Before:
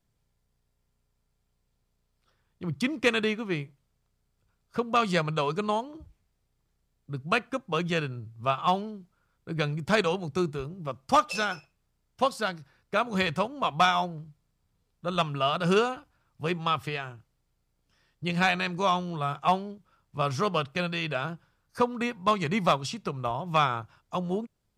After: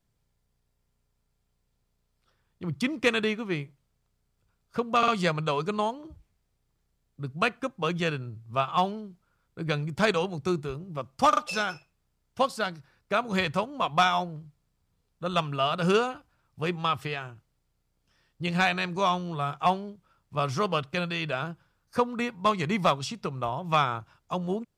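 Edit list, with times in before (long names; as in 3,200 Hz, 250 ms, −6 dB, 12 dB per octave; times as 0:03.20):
0:04.98: stutter 0.05 s, 3 plays
0:11.19: stutter 0.04 s, 3 plays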